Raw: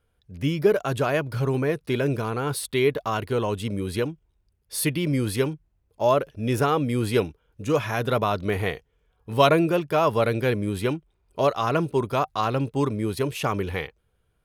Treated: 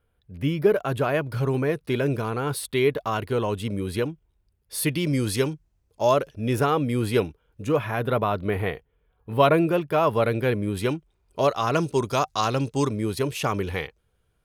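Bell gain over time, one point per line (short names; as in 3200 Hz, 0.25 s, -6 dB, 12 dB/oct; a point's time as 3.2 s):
bell 6200 Hz 1.2 oct
-8.5 dB
from 1.21 s -2.5 dB
from 4.89 s +6.5 dB
from 6.35 s -2.5 dB
from 7.69 s -14.5 dB
from 9.54 s -7 dB
from 10.77 s +3 dB
from 11.74 s +12.5 dB
from 12.9 s +3 dB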